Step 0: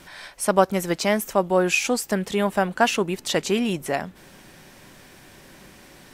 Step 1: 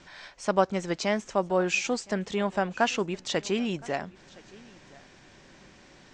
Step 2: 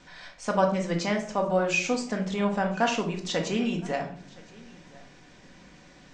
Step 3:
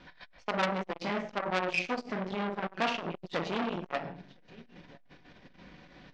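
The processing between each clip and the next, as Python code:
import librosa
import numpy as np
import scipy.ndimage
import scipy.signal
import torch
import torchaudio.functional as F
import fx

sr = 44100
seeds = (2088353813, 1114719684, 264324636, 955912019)

y1 = scipy.signal.sosfilt(scipy.signal.butter(8, 7400.0, 'lowpass', fs=sr, output='sos'), x)
y1 = y1 + 10.0 ** (-23.5 / 20.0) * np.pad(y1, (int(1016 * sr / 1000.0), 0))[:len(y1)]
y1 = F.gain(torch.from_numpy(y1), -5.5).numpy()
y2 = fx.room_shoebox(y1, sr, seeds[0], volume_m3=650.0, walls='furnished', distance_m=1.9)
y2 = F.gain(torch.from_numpy(y2), -2.0).numpy()
y3 = scipy.signal.sosfilt(scipy.signal.butter(4, 4400.0, 'lowpass', fs=sr, output='sos'), y2)
y3 = fx.transformer_sat(y3, sr, knee_hz=2800.0)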